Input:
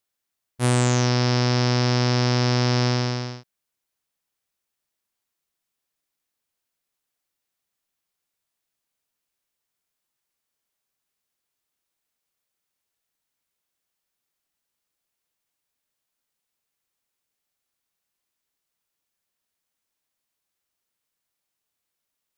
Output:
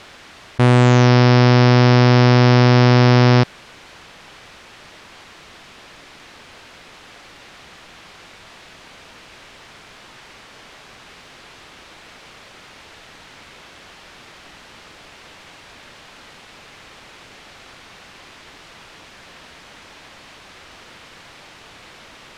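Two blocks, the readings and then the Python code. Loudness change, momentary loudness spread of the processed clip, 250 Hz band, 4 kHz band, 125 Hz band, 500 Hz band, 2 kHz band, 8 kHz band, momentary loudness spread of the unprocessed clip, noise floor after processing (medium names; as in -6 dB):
+8.5 dB, 5 LU, +10.0 dB, +4.5 dB, +9.5 dB, +10.0 dB, +9.5 dB, -2.5 dB, 7 LU, -44 dBFS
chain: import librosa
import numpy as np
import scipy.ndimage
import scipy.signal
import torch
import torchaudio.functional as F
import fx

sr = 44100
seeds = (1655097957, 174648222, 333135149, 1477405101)

y = scipy.signal.sosfilt(scipy.signal.butter(2, 3200.0, 'lowpass', fs=sr, output='sos'), x)
y = fx.env_flatten(y, sr, amount_pct=100)
y = y * librosa.db_to_amplitude(7.0)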